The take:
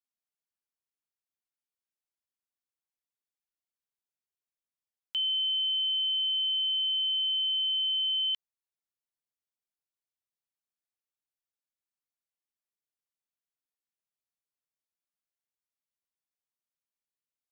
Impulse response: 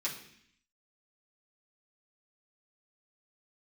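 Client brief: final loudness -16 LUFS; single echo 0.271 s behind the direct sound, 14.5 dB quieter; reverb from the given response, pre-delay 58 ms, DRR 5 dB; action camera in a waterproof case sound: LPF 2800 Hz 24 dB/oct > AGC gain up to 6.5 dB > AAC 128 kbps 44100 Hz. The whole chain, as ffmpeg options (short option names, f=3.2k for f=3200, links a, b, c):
-filter_complex "[0:a]aecho=1:1:271:0.188,asplit=2[a][b];[1:a]atrim=start_sample=2205,adelay=58[c];[b][c]afir=irnorm=-1:irlink=0,volume=-8.5dB[d];[a][d]amix=inputs=2:normalize=0,lowpass=f=2.8k:w=0.5412,lowpass=f=2.8k:w=1.3066,dynaudnorm=m=6.5dB,volume=10dB" -ar 44100 -c:a aac -b:a 128k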